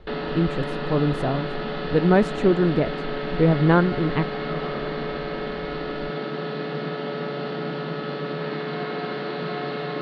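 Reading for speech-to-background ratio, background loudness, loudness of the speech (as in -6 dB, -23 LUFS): 7.0 dB, -29.5 LUFS, -22.5 LUFS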